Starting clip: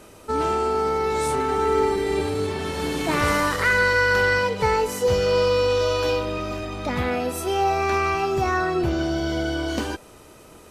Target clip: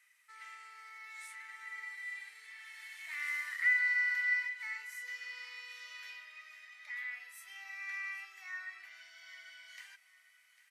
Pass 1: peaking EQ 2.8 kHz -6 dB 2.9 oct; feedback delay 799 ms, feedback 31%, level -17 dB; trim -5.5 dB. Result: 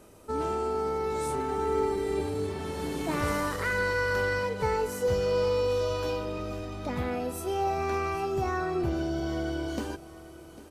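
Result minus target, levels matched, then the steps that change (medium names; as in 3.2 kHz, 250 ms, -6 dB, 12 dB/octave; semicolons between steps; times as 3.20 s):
2 kHz band -6.5 dB
add first: ladder high-pass 1.9 kHz, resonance 85%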